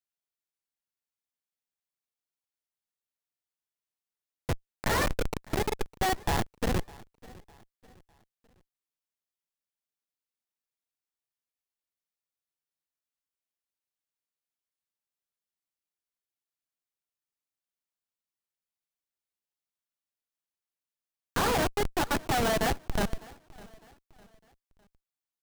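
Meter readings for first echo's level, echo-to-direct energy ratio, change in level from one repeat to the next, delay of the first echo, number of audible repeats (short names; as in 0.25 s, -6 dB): -22.0 dB, -21.5 dB, -8.0 dB, 0.605 s, 2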